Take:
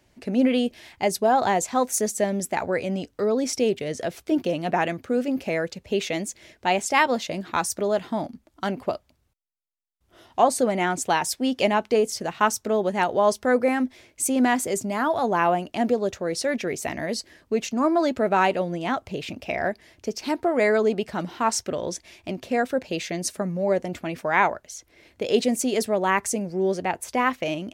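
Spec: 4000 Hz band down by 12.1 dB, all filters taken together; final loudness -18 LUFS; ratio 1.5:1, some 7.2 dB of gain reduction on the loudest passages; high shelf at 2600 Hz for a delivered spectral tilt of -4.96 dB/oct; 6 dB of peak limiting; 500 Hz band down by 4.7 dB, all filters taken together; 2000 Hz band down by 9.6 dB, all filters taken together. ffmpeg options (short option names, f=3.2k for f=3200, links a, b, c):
-af "equalizer=f=500:t=o:g=-5,equalizer=f=2k:t=o:g=-7,highshelf=f=2.6k:g=-9,equalizer=f=4k:t=o:g=-6,acompressor=threshold=-38dB:ratio=1.5,volume=17.5dB,alimiter=limit=-7dB:level=0:latency=1"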